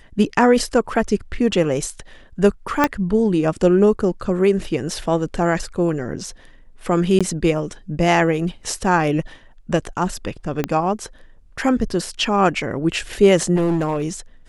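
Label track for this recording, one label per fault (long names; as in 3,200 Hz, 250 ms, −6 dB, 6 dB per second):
2.840000	2.840000	click −2 dBFS
7.190000	7.210000	drop-out 16 ms
10.640000	10.640000	click −7 dBFS
13.550000	14.040000	clipping −15.5 dBFS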